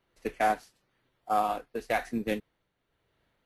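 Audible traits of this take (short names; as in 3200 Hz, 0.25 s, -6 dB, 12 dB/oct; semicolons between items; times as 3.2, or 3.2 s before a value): tremolo triangle 1 Hz, depth 60%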